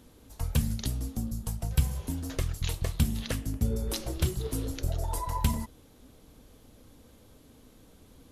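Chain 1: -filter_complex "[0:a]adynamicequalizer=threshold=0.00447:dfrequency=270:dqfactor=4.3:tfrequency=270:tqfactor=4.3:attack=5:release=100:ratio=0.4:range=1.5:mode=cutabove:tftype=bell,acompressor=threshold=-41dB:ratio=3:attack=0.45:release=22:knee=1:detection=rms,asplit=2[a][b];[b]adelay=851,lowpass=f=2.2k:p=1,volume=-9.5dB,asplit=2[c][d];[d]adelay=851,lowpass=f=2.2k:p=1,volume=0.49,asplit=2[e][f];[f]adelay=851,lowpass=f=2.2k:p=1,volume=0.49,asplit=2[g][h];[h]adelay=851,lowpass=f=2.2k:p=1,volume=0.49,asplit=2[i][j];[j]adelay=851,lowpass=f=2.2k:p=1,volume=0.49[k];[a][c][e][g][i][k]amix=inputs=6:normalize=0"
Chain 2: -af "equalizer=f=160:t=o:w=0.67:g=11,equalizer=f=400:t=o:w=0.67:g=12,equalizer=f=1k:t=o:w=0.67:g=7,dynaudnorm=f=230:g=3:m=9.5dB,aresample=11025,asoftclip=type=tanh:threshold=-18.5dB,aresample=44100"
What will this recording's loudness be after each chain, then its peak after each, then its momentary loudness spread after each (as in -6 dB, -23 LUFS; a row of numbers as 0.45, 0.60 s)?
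-44.0, -25.5 LUFS; -29.5, -16.0 dBFS; 13, 17 LU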